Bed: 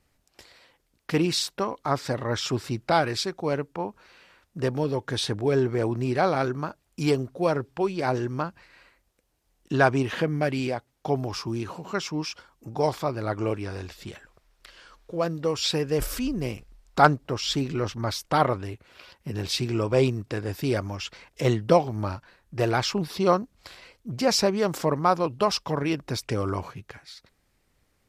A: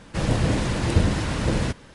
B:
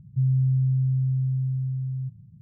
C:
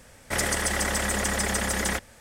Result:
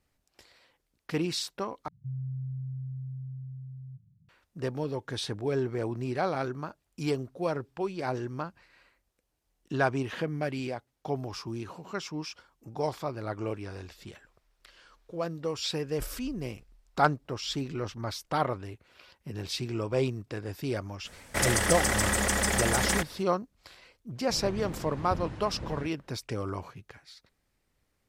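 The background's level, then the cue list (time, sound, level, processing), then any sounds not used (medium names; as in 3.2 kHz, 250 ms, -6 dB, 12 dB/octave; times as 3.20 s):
bed -6.5 dB
1.88 s: replace with B -14 dB
21.04 s: add C -0.5 dB, fades 0.02 s
24.15 s: add A -16 dB + low-pass 1.9 kHz 6 dB/octave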